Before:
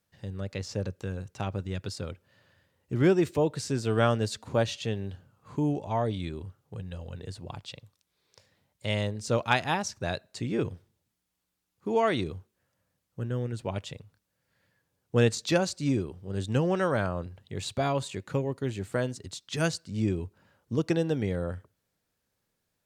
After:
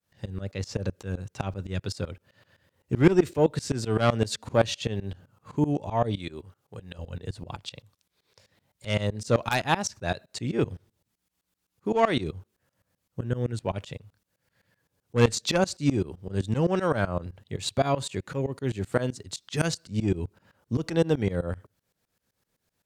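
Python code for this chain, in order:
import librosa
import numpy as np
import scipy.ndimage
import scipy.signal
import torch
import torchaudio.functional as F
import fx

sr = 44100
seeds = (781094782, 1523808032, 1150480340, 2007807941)

y = fx.low_shelf(x, sr, hz=230.0, db=-10.0, at=(6.18, 6.99))
y = fx.cheby_harmonics(y, sr, harmonics=(4, 6), levels_db=(-9, -16), full_scale_db=-7.5)
y = fx.tremolo_shape(y, sr, shape='saw_up', hz=7.8, depth_pct=95)
y = F.gain(torch.from_numpy(y), 7.0).numpy()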